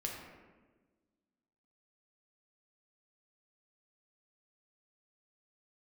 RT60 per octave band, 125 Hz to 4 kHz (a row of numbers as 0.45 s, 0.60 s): 1.6 s, 1.9 s, 1.5 s, 1.1 s, 1.1 s, 0.75 s